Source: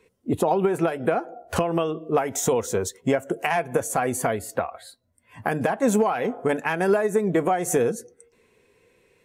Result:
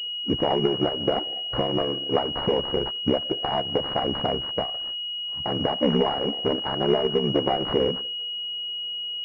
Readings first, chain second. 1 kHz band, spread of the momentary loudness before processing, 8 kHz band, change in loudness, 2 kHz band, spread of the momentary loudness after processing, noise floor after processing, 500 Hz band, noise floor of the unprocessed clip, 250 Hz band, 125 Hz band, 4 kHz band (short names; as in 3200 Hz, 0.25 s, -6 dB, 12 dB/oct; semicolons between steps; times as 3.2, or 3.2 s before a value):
-3.0 dB, 7 LU, under -30 dB, -0.5 dB, -9.0 dB, 6 LU, -32 dBFS, -2.0 dB, -65 dBFS, -1.0 dB, -0.5 dB, +20.5 dB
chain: FFT order left unsorted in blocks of 16 samples; ring modulator 34 Hz; pulse-width modulation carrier 2900 Hz; gain +2 dB